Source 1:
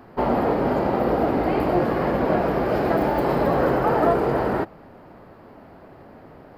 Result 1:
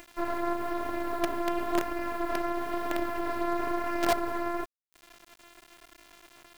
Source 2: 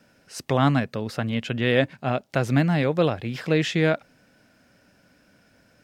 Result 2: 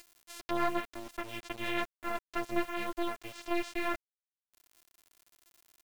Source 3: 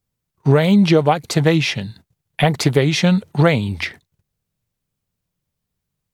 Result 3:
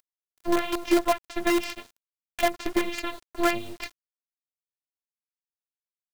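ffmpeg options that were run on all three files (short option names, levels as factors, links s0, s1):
-filter_complex "[0:a]acrossover=split=3500[s0][s1];[s1]acompressor=threshold=0.00501:ratio=4:attack=1:release=60[s2];[s0][s2]amix=inputs=2:normalize=0,afftfilt=real='hypot(re,im)*cos(PI*b)':imag='0':win_size=512:overlap=0.75,acompressor=mode=upward:threshold=0.0447:ratio=2.5,bandreject=f=60:t=h:w=6,bandreject=f=120:t=h:w=6,bandreject=f=180:t=h:w=6,bandreject=f=240:t=h:w=6,bandreject=f=300:t=h:w=6,bandreject=f=360:t=h:w=6,bandreject=f=420:t=h:w=6,aeval=exprs='sgn(val(0))*max(abs(val(0))-0.0211,0)':c=same,flanger=delay=3.3:depth=5.4:regen=-25:speed=1:shape=sinusoidal,acrusher=bits=5:dc=4:mix=0:aa=0.000001"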